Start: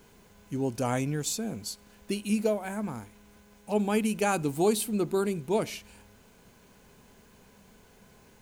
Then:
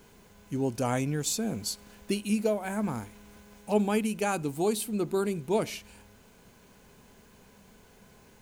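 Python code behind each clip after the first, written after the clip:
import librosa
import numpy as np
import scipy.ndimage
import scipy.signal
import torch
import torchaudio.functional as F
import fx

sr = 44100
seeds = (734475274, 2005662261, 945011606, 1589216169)

y = fx.rider(x, sr, range_db=4, speed_s=0.5)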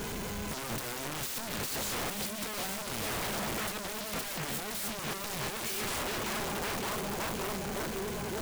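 y = fx.echo_filtered(x, sr, ms=563, feedback_pct=70, hz=3800.0, wet_db=-16.5)
y = fx.power_curve(y, sr, exponent=0.35)
y = (np.mod(10.0 ** (24.5 / 20.0) * y + 1.0, 2.0) - 1.0) / 10.0 ** (24.5 / 20.0)
y = y * 10.0 ** (-7.5 / 20.0)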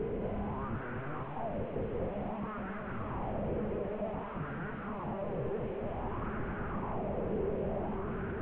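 y = fx.delta_mod(x, sr, bps=16000, step_db=-55.5)
y = y + 10.0 ** (-3.5 / 20.0) * np.pad(y, (int(222 * sr / 1000.0), 0))[:len(y)]
y = fx.bell_lfo(y, sr, hz=0.54, low_hz=450.0, high_hz=1500.0, db=13)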